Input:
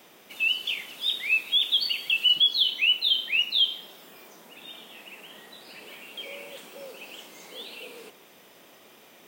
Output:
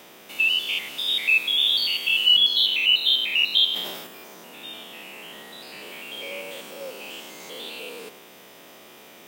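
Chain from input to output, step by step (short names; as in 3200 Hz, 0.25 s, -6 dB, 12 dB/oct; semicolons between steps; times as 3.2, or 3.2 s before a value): stepped spectrum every 0.1 s; 3.67–4.07 sustainer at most 43 dB/s; gain +7.5 dB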